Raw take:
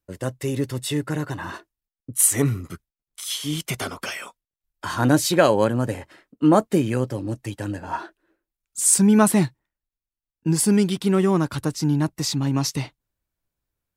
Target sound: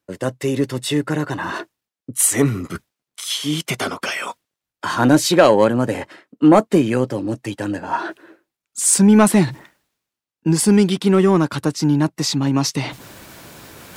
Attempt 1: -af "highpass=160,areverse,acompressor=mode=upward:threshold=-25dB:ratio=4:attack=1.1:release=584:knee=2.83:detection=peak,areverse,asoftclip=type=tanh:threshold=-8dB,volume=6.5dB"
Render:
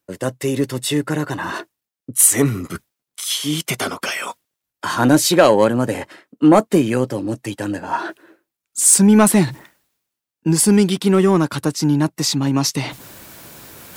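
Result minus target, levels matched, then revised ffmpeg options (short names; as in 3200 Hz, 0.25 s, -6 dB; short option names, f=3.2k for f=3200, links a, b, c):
8000 Hz band +3.0 dB
-af "highpass=160,highshelf=f=9.1k:g=-9.5,areverse,acompressor=mode=upward:threshold=-25dB:ratio=4:attack=1.1:release=584:knee=2.83:detection=peak,areverse,asoftclip=type=tanh:threshold=-8dB,volume=6.5dB"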